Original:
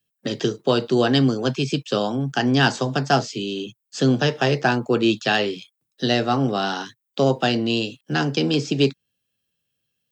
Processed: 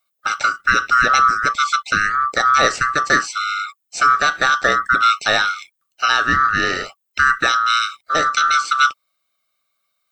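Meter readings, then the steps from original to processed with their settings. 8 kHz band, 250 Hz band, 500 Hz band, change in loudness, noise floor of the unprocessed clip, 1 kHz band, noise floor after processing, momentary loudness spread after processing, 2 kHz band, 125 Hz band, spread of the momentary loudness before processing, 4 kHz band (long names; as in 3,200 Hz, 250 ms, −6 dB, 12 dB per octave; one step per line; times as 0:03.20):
+10.0 dB, −12.5 dB, −6.0 dB, +5.0 dB, −79 dBFS, +11.0 dB, −74 dBFS, 8 LU, +11.0 dB, −13.0 dB, 9 LU, +3.0 dB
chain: neighbouring bands swapped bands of 1,000 Hz
in parallel at 0 dB: brickwall limiter −12 dBFS, peak gain reduction 8.5 dB
on the sum: level −1 dB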